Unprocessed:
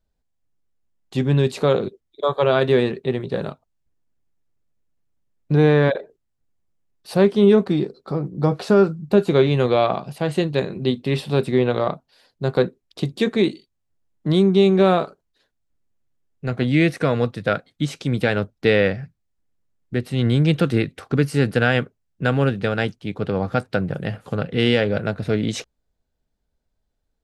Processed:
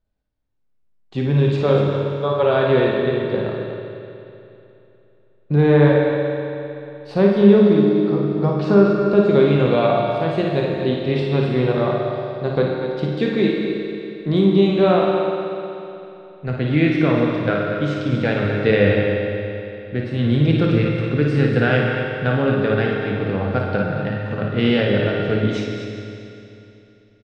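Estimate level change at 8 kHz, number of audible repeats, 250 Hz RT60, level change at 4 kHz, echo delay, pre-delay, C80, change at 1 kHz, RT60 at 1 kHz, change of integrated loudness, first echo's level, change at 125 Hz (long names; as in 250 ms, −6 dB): can't be measured, 2, 3.0 s, −1.0 dB, 55 ms, 19 ms, 0.5 dB, +1.5 dB, 3.0 s, +2.0 dB, −6.0 dB, +2.5 dB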